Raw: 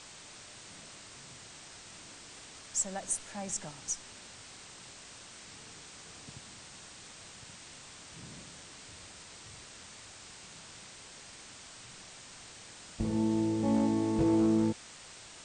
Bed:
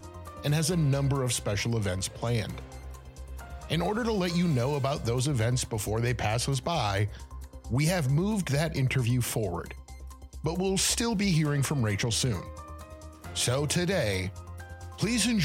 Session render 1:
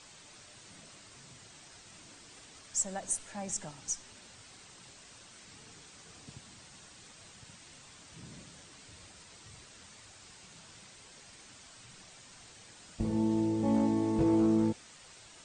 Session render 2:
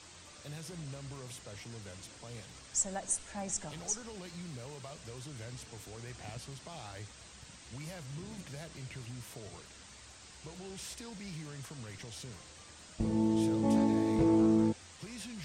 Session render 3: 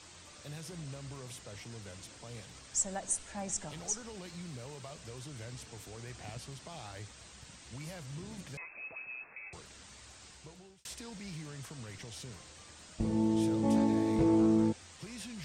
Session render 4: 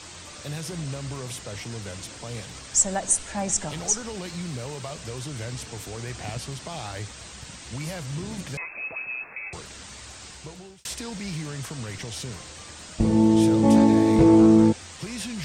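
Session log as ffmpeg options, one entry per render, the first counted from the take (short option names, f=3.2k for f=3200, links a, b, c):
-af "afftdn=nr=6:nf=-51"
-filter_complex "[1:a]volume=-19dB[a];[0:a][a]amix=inputs=2:normalize=0"
-filter_complex "[0:a]asettb=1/sr,asplit=3[a][b][c];[a]atrim=end=8.574[d];[b]atrim=start=8.57:end=9.53,asetpts=PTS-STARTPTS,afade=t=in:d=0.004:c=qsin,afade=t=out:st=0.956:d=0.004:c=qsin,lowpass=f=2.3k:t=q:w=0.5098,lowpass=f=2.3k:t=q:w=0.6013,lowpass=f=2.3k:t=q:w=0.9,lowpass=f=2.3k:t=q:w=2.563,afreqshift=-2700[e];[c]atrim=start=9.526[f];[d][e]acrossfade=d=0.004:c1=hsin:c2=qsin[g];[g][f]acrossfade=d=0.004:c1=qsin:c2=hsin,asplit=2[h][i];[h]atrim=end=10.85,asetpts=PTS-STARTPTS,afade=t=out:st=10.26:d=0.59[j];[i]atrim=start=10.85,asetpts=PTS-STARTPTS,afade=t=in:d=0.004:c=hsin[k];[j][k]concat=n=2:v=0:a=1"
-af "volume=11.5dB"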